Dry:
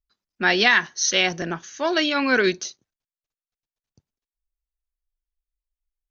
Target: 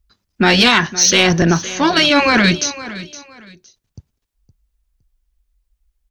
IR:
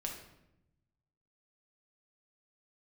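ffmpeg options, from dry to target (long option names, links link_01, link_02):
-filter_complex "[0:a]afftfilt=real='re*lt(hypot(re,im),0.562)':imag='im*lt(hypot(re,im),0.562)':win_size=1024:overlap=0.75,equalizer=frequency=63:width_type=o:width=2.9:gain=14,asplit=2[link_01][link_02];[link_02]alimiter=limit=-16dB:level=0:latency=1,volume=0dB[link_03];[link_01][link_03]amix=inputs=2:normalize=0,acontrast=69,aecho=1:1:514|1028:0.158|0.0396"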